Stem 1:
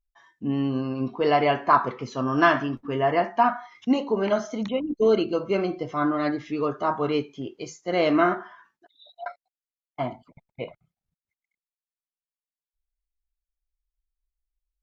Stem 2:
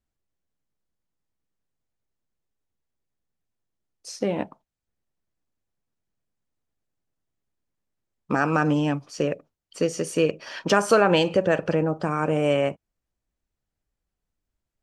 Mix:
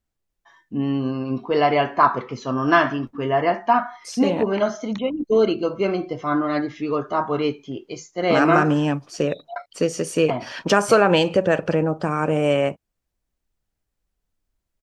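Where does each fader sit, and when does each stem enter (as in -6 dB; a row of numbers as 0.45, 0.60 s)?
+2.5, +2.5 dB; 0.30, 0.00 s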